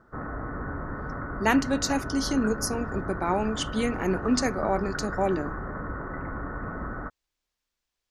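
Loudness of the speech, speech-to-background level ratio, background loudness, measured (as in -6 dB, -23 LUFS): -27.5 LUFS, 7.5 dB, -35.0 LUFS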